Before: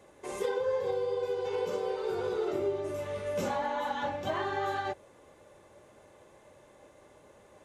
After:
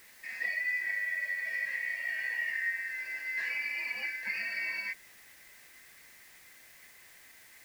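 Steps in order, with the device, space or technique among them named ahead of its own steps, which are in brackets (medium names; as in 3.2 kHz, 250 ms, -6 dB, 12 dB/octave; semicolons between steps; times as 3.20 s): split-band scrambled radio (four frequency bands reordered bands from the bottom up 3142; band-pass 330–3200 Hz; white noise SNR 21 dB); trim -2 dB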